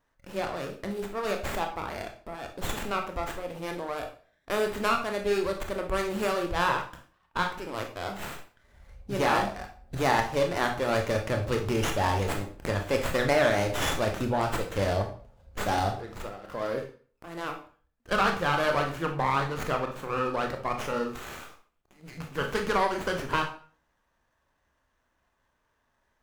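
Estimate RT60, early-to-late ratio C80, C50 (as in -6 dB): 0.45 s, 13.5 dB, 8.5 dB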